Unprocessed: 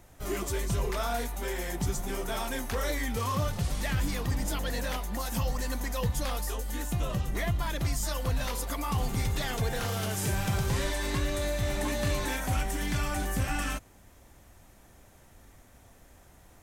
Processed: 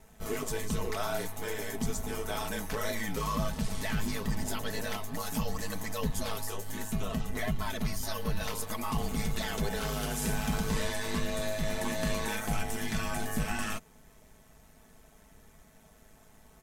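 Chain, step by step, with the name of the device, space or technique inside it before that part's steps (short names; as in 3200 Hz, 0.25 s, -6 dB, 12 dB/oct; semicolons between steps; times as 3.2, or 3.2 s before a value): 7.82–8.43 bell 7600 Hz -11 dB 0.22 oct; ring-modulated robot voice (ring modulator 53 Hz; comb 4.6 ms, depth 64%)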